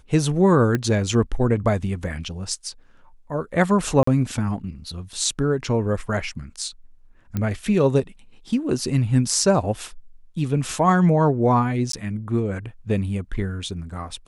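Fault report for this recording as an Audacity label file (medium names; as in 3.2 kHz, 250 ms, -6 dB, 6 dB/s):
0.750000	0.750000	pop -10 dBFS
4.030000	4.070000	dropout 44 ms
7.370000	7.370000	pop -13 dBFS
11.920000	11.930000	dropout 13 ms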